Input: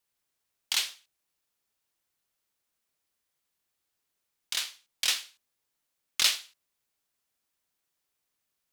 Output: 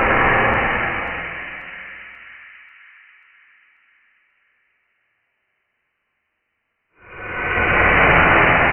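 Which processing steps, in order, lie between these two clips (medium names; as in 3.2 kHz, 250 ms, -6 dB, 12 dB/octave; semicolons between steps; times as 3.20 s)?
square wave that keeps the level; elliptic high-pass 610 Hz, stop band 40 dB; peaking EQ 1.5 kHz +10 dB 1.3 oct; frequency inversion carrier 3.6 kHz; doubling 49 ms -10.5 dB; Paulstretch 6.9×, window 0.25 s, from 5.07 s; two-band feedback delay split 1.7 kHz, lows 97 ms, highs 538 ms, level -6 dB; trim +5.5 dB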